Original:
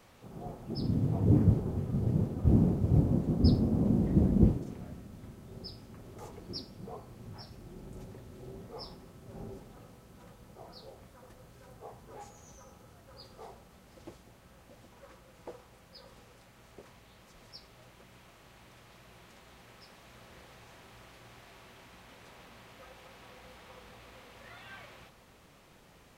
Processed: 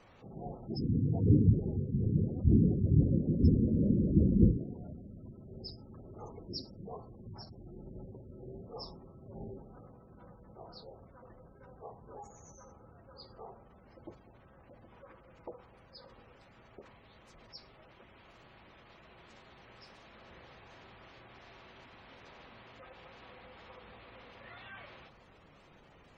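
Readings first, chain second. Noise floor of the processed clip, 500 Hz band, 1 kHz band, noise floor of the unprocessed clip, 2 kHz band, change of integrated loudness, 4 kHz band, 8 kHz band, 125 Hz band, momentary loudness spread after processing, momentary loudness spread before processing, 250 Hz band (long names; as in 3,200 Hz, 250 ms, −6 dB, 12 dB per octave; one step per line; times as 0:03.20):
−60 dBFS, −1.5 dB, −3.0 dB, −59 dBFS, −1.5 dB, −1.0 dB, −2.5 dB, can't be measured, −0.5 dB, 22 LU, 22 LU, −0.5 dB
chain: gate on every frequency bin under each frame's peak −20 dB strong
mains-hum notches 60/120/180/240 Hz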